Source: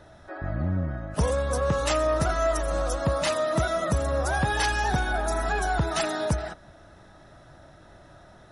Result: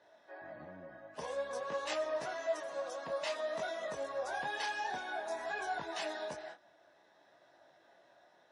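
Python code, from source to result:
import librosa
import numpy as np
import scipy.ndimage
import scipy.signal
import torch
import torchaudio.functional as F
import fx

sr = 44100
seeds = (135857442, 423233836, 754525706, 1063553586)

y = fx.bandpass_edges(x, sr, low_hz=470.0, high_hz=5400.0)
y = fx.notch(y, sr, hz=1300.0, q=5.2)
y = fx.detune_double(y, sr, cents=18)
y = F.gain(torch.from_numpy(y), -6.0).numpy()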